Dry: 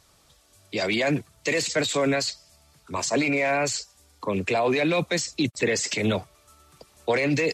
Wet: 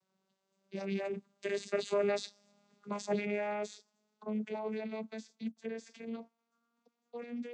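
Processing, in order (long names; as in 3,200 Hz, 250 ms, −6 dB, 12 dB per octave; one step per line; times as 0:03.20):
vocoder with a gliding carrier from F#3, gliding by +5 semitones
source passing by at 0:02.42, 8 m/s, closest 5.1 metres
level −3 dB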